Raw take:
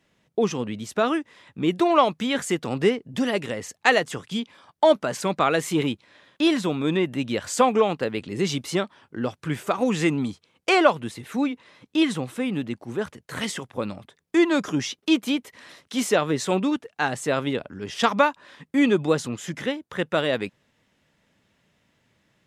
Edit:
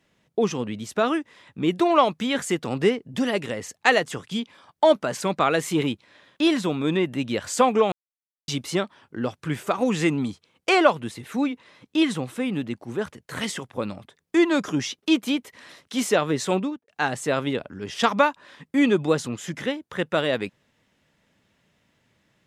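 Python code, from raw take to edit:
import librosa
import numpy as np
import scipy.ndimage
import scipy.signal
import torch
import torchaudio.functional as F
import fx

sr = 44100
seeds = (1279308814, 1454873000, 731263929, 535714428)

y = fx.studio_fade_out(x, sr, start_s=16.52, length_s=0.36)
y = fx.edit(y, sr, fx.silence(start_s=7.92, length_s=0.56), tone=tone)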